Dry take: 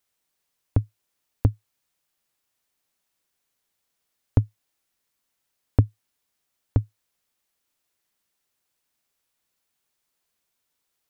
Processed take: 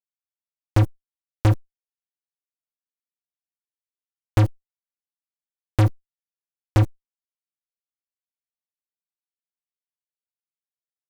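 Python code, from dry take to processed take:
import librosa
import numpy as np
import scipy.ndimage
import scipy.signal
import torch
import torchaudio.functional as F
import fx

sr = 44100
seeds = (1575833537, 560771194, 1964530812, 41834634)

y = fx.fuzz(x, sr, gain_db=42.0, gate_db=-46.0)
y = fx.env_flatten(y, sr, amount_pct=50)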